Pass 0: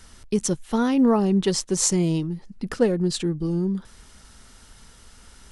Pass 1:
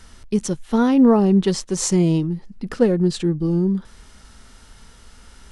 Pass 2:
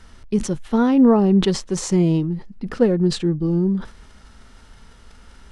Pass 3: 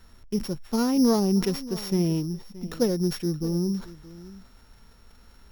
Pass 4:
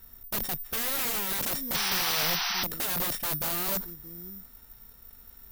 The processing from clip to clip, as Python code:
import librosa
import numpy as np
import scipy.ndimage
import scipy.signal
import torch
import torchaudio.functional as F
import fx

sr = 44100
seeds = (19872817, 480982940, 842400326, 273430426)

y1 = fx.high_shelf(x, sr, hz=6600.0, db=-6.5)
y1 = fx.hpss(y1, sr, part='harmonic', gain_db=5)
y2 = fx.high_shelf(y1, sr, hz=5300.0, db=-10.5)
y2 = fx.sustainer(y2, sr, db_per_s=150.0)
y3 = np.r_[np.sort(y2[:len(y2) // 8 * 8].reshape(-1, 8), axis=1).ravel(), y2[len(y2) // 8 * 8:]]
y3 = y3 + 10.0 ** (-18.0 / 20.0) * np.pad(y3, (int(624 * sr / 1000.0), 0))[:len(y3)]
y3 = y3 * 10.0 ** (-7.0 / 20.0)
y4 = (np.mod(10.0 ** (25.5 / 20.0) * y3 + 1.0, 2.0) - 1.0) / 10.0 ** (25.5 / 20.0)
y4 = (np.kron(y4[::3], np.eye(3)[0]) * 3)[:len(y4)]
y4 = fx.spec_paint(y4, sr, seeds[0], shape='noise', start_s=1.74, length_s=0.9, low_hz=690.0, high_hz=6100.0, level_db=-26.0)
y4 = y4 * 10.0 ** (-4.0 / 20.0)